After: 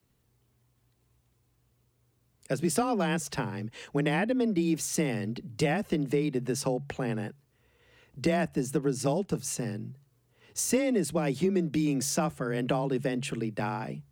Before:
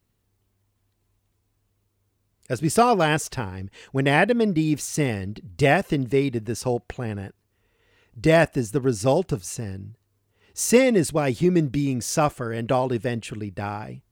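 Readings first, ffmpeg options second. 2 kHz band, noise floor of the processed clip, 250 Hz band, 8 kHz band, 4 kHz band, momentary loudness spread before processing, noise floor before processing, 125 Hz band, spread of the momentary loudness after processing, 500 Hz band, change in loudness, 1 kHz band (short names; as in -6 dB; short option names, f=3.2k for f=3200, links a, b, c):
-9.0 dB, -71 dBFS, -4.5 dB, -3.5 dB, -6.0 dB, 14 LU, -72 dBFS, -7.0 dB, 8 LU, -8.0 dB, -7.0 dB, -9.5 dB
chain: -filter_complex "[0:a]bandreject=f=60:t=h:w=6,bandreject=f=120:t=h:w=6,acrossover=split=110|260[a][b][c];[a]acompressor=threshold=-50dB:ratio=4[d];[b]acompressor=threshold=-31dB:ratio=4[e];[c]acompressor=threshold=-30dB:ratio=4[f];[d][e][f]amix=inputs=3:normalize=0,afreqshift=21,volume=1dB"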